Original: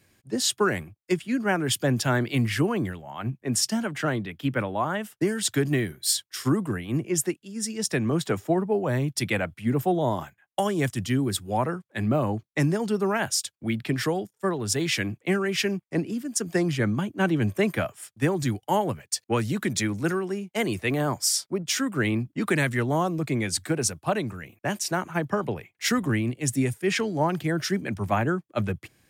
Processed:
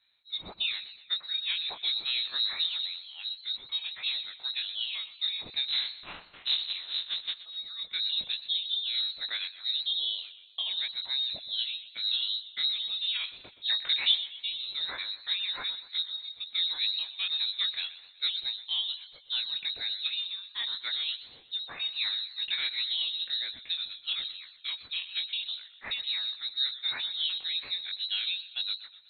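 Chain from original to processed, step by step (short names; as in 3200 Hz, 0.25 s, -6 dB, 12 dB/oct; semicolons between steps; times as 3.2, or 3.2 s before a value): 5.67–7.35 cycle switcher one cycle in 3, inverted; air absorption 320 m; chorus 2.5 Hz, delay 17.5 ms, depth 6 ms; 13.44–14.15 bell 840 Hz +13 dB 2.9 oct; inverted band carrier 4000 Hz; warbling echo 0.123 s, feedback 50%, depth 101 cents, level -15.5 dB; gain -4 dB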